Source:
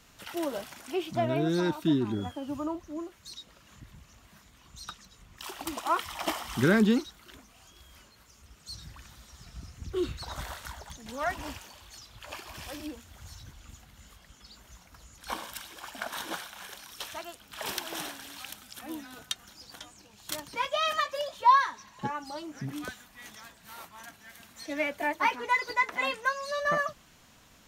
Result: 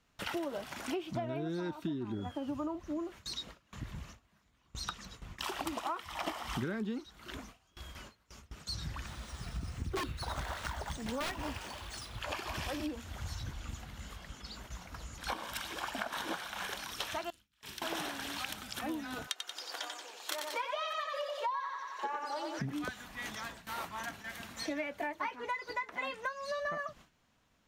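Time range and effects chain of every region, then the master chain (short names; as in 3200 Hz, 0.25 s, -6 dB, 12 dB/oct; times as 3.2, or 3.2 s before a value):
9.06–12.21 careless resampling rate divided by 3×, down none, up hold + wrapped overs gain 25.5 dB
17.3–17.82 passive tone stack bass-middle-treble 6-0-2 + flutter echo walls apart 6.5 m, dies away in 0.27 s
19.27–22.59 inverse Chebyshev high-pass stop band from 150 Hz, stop band 50 dB + feedback echo 91 ms, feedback 45%, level -4.5 dB
whole clip: gate with hold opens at -44 dBFS; high shelf 5400 Hz -9.5 dB; compressor 12:1, threshold -42 dBFS; gain +8 dB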